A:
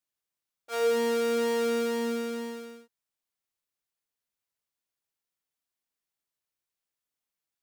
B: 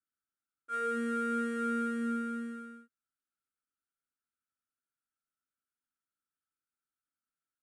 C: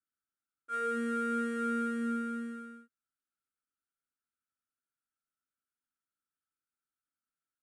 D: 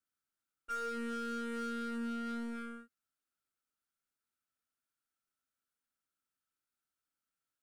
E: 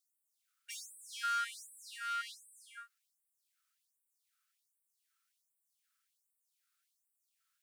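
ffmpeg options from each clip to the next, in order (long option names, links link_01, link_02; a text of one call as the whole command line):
ffmpeg -i in.wav -af "firequalizer=gain_entry='entry(180,0);entry(250,7);entry(530,-11);entry(940,-28);entry(1300,14);entry(1900,-4);entry(4800,-18);entry(9200,0);entry(14000,-26)':delay=0.05:min_phase=1,volume=-6dB" out.wav
ffmpeg -i in.wav -af anull out.wav
ffmpeg -i in.wav -af "acompressor=threshold=-37dB:ratio=20,aeval=exprs='0.0224*(cos(1*acos(clip(val(0)/0.0224,-1,1)))-cos(1*PI/2))+0.002*(cos(8*acos(clip(val(0)/0.0224,-1,1)))-cos(8*PI/2))':channel_layout=same,volume=1.5dB" out.wav
ffmpeg -i in.wav -af "afftfilt=real='re*gte(b*sr/1024,1000*pow(7800/1000,0.5+0.5*sin(2*PI*1.3*pts/sr)))':imag='im*gte(b*sr/1024,1000*pow(7800/1000,0.5+0.5*sin(2*PI*1.3*pts/sr)))':win_size=1024:overlap=0.75,volume=9.5dB" out.wav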